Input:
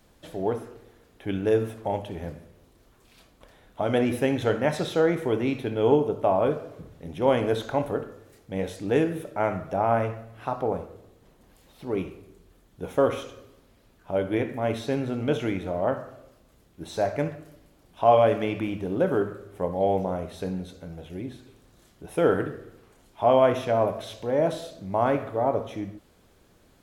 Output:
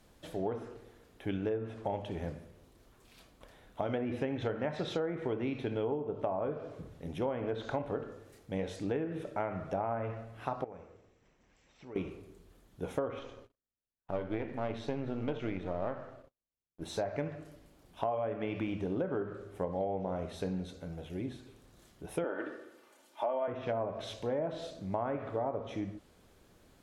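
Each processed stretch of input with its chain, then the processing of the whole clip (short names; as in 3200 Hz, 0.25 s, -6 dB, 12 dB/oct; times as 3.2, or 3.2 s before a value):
10.64–11.96 compressor 2:1, threshold -36 dBFS + rippled Chebyshev low-pass 7800 Hz, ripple 9 dB
13.19–16.82 half-wave gain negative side -7 dB + gate -53 dBFS, range -37 dB + high shelf 5900 Hz -9.5 dB
22.24–23.48 HPF 410 Hz + comb 3.4 ms, depth 58%
whole clip: treble ducked by the level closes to 2000 Hz, closed at -18.5 dBFS; compressor 12:1, threshold -27 dBFS; gain -3 dB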